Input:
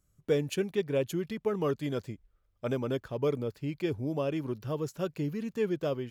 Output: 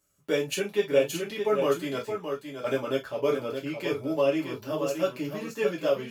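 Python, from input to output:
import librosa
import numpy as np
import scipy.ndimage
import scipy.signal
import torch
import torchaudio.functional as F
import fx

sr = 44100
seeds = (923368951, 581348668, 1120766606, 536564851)

y = fx.highpass(x, sr, hz=560.0, slope=6)
y = y + 10.0 ** (-7.0 / 20.0) * np.pad(y, (int(620 * sr / 1000.0), 0))[:len(y)]
y = fx.rev_gated(y, sr, seeds[0], gate_ms=80, shape='falling', drr_db=-4.0)
y = y * librosa.db_to_amplitude(2.5)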